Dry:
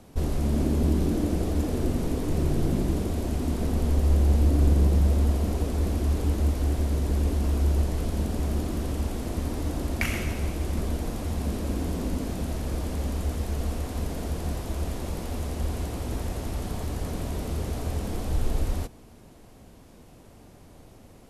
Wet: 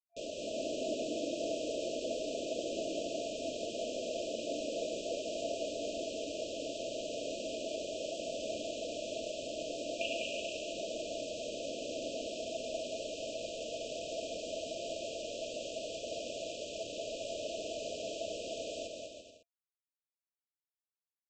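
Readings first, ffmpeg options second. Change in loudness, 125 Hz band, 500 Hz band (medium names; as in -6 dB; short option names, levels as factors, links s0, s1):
-11.0 dB, -34.5 dB, -1.5 dB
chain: -af "highpass=f=390:w=0.5412,highpass=f=390:w=1.3066,equalizer=f=390:t=q:w=4:g=-9,equalizer=f=660:t=q:w=4:g=9,equalizer=f=1000:t=q:w=4:g=-5,equalizer=f=1700:t=q:w=4:g=-9,equalizer=f=3100:t=q:w=4:g=6,lowpass=f=3300:w=0.5412,lowpass=f=3300:w=1.3066,aresample=16000,acrusher=bits=6:mix=0:aa=0.000001,aresample=44100,aecho=1:1:200|340|438|506.6|554.6:0.631|0.398|0.251|0.158|0.1,afftfilt=real='re*(1-between(b*sr/4096,680,2400))':imag='im*(1-between(b*sr/4096,680,2400))':win_size=4096:overlap=0.75,volume=0.708"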